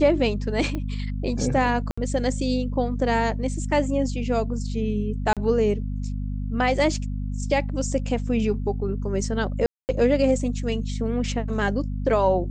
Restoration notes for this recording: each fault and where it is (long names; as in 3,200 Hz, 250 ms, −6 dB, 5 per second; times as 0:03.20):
mains hum 50 Hz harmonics 5 −28 dBFS
0:00.75: click −18 dBFS
0:01.91–0:01.98: drop-out 65 ms
0:05.33–0:05.37: drop-out 37 ms
0:09.66–0:09.89: drop-out 229 ms